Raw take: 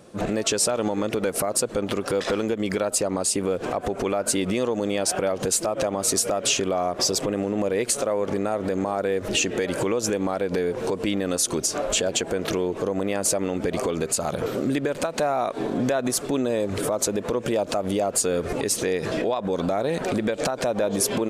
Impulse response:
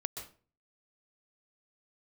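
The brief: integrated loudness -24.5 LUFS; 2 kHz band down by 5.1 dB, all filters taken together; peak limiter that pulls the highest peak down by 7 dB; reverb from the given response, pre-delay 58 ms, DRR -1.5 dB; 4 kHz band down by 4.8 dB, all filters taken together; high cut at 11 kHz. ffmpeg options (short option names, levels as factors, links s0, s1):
-filter_complex "[0:a]lowpass=11000,equalizer=f=2000:t=o:g=-5.5,equalizer=f=4000:t=o:g=-5,alimiter=limit=0.119:level=0:latency=1,asplit=2[s0][s1];[1:a]atrim=start_sample=2205,adelay=58[s2];[s1][s2]afir=irnorm=-1:irlink=0,volume=1.12[s3];[s0][s3]amix=inputs=2:normalize=0"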